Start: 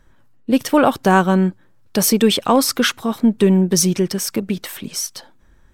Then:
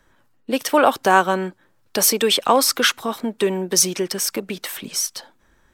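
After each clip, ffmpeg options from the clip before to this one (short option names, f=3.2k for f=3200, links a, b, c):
-filter_complex "[0:a]lowshelf=f=210:g=-11.5,acrossover=split=320|510|3100[a][b][c][d];[a]acompressor=threshold=-32dB:ratio=6[e];[e][b][c][d]amix=inputs=4:normalize=0,volume=1.5dB"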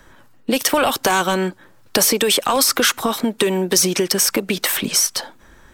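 -filter_complex "[0:a]apsyclip=14.5dB,acrossover=split=2600|5600[a][b][c];[a]acompressor=threshold=-14dB:ratio=4[d];[b]acompressor=threshold=-22dB:ratio=4[e];[c]acompressor=threshold=-14dB:ratio=4[f];[d][e][f]amix=inputs=3:normalize=0,volume=-3dB"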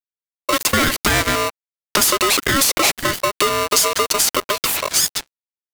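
-af "acrusher=bits=3:mix=0:aa=0.5,aeval=exprs='val(0)*sgn(sin(2*PI*820*n/s))':c=same"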